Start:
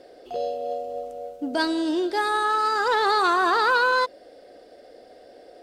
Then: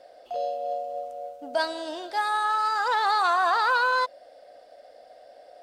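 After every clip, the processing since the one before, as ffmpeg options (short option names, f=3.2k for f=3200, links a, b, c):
-af "lowshelf=f=490:t=q:w=3:g=-7.5,volume=-3.5dB"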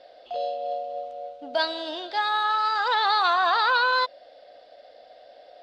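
-af "lowpass=f=3.8k:t=q:w=2.5"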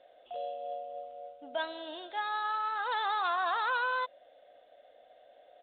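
-af "aresample=8000,aresample=44100,volume=-9dB"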